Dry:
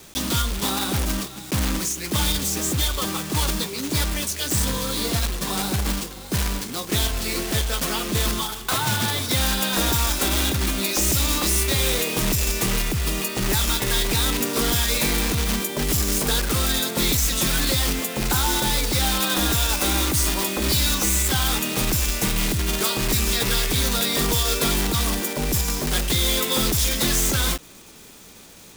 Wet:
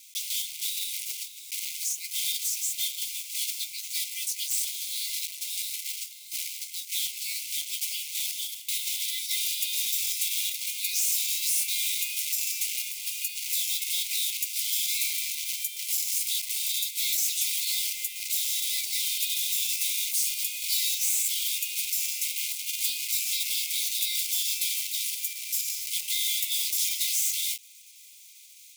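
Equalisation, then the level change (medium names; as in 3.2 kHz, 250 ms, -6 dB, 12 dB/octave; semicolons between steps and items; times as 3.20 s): brick-wall FIR high-pass 2 kHz; treble shelf 4.2 kHz +6.5 dB; -8.5 dB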